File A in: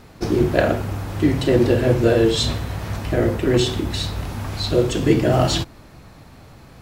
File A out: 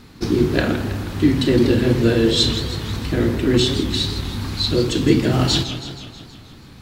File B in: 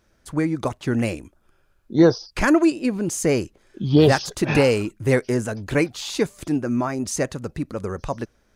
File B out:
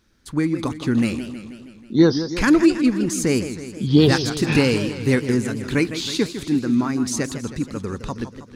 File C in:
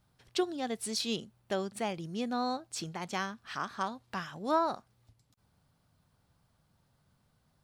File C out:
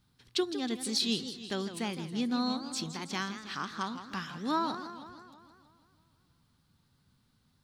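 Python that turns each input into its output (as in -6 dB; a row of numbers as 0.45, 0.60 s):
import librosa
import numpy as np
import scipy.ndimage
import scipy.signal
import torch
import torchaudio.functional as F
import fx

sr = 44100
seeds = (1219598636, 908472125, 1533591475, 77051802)

y = fx.graphic_eq_15(x, sr, hz=(250, 630, 4000), db=(5, -10, 6))
y = fx.echo_warbled(y, sr, ms=160, feedback_pct=61, rate_hz=2.8, cents=204, wet_db=-11.0)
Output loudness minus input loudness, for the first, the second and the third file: +1.0, +1.5, +1.0 LU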